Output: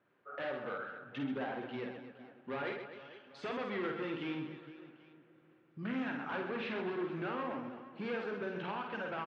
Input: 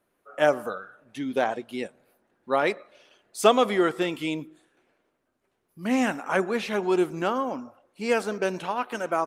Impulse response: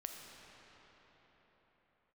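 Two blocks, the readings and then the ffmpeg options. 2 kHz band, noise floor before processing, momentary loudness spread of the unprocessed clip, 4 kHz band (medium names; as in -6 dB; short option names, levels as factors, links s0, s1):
-10.5 dB, -75 dBFS, 14 LU, -14.5 dB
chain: -filter_complex "[0:a]acompressor=threshold=0.0112:ratio=2,asoftclip=type=hard:threshold=0.02,highpass=100,equalizer=f=130:t=q:w=4:g=8,equalizer=f=650:t=q:w=4:g=-4,equalizer=f=1600:t=q:w=4:g=4,lowpass=f=3400:w=0.5412,lowpass=f=3400:w=1.3066,aecho=1:1:50|130|258|462.8|790.5:0.631|0.398|0.251|0.158|0.1,asplit=2[s0][s1];[1:a]atrim=start_sample=2205[s2];[s1][s2]afir=irnorm=-1:irlink=0,volume=0.282[s3];[s0][s3]amix=inputs=2:normalize=0,volume=0.708"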